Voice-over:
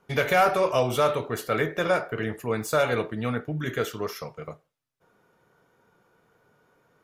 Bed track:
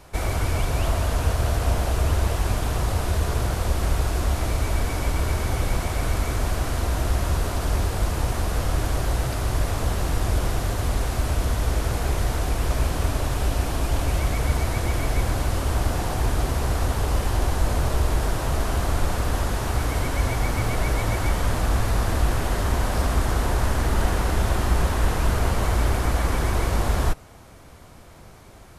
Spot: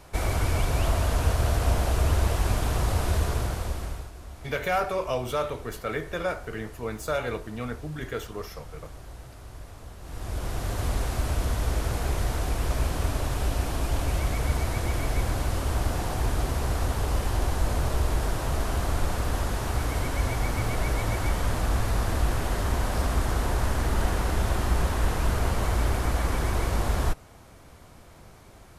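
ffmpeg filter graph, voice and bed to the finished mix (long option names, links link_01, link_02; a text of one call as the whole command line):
ffmpeg -i stem1.wav -i stem2.wav -filter_complex "[0:a]adelay=4350,volume=-5.5dB[link_01];[1:a]volume=14.5dB,afade=type=out:start_time=3.15:duration=0.96:silence=0.125893,afade=type=in:start_time=10.01:duration=0.82:silence=0.158489[link_02];[link_01][link_02]amix=inputs=2:normalize=0" out.wav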